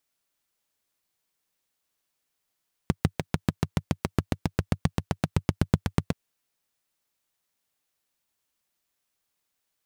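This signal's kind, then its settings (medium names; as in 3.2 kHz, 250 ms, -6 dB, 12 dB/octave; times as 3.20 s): single-cylinder engine model, changing speed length 3.23 s, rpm 800, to 1000, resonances 97/150 Hz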